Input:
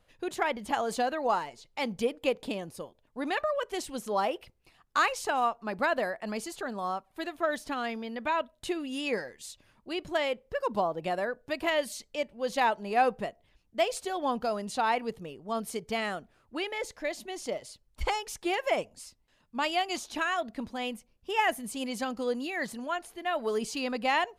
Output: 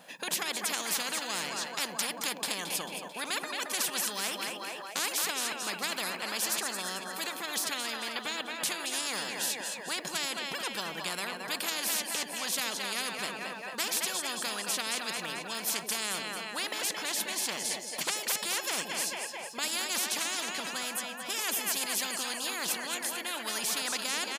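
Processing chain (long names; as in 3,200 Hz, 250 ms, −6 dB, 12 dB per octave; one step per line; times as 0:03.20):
linear-phase brick-wall high-pass 160 Hz
high-shelf EQ 7,900 Hz +5 dB
comb filter 1.2 ms, depth 40%
on a send: echo with a time of its own for lows and highs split 470 Hz, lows 90 ms, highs 221 ms, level −13 dB
on the sum: every bin compressed towards the loudest bin 10 to 1
level −2.5 dB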